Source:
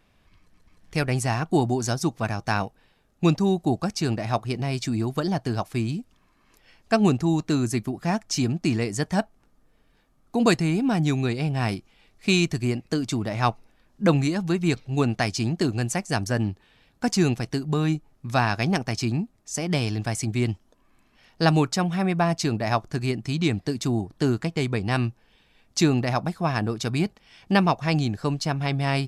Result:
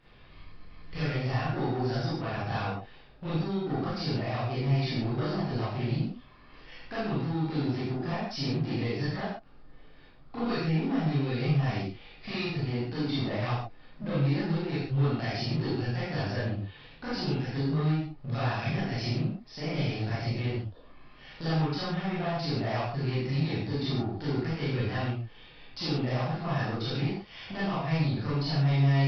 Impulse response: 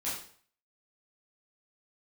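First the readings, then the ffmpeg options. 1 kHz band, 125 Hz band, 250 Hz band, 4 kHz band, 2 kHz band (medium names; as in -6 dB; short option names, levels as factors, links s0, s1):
-7.5 dB, -3.0 dB, -7.0 dB, -5.5 dB, -7.0 dB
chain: -filter_complex "[0:a]acompressor=threshold=0.02:ratio=5,aresample=11025,volume=50.1,asoftclip=hard,volume=0.02,aresample=44100[s0];[1:a]atrim=start_sample=2205,atrim=end_sample=4410,asetrate=23373,aresample=44100[s1];[s0][s1]afir=irnorm=-1:irlink=0"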